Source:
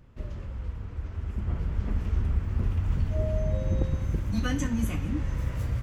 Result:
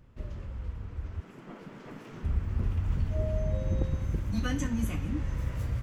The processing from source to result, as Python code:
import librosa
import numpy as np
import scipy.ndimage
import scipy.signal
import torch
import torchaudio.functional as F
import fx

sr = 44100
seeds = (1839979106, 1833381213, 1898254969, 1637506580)

y = fx.spec_gate(x, sr, threshold_db=-15, keep='weak', at=(1.2, 2.23), fade=0.02)
y = y * librosa.db_to_amplitude(-2.5)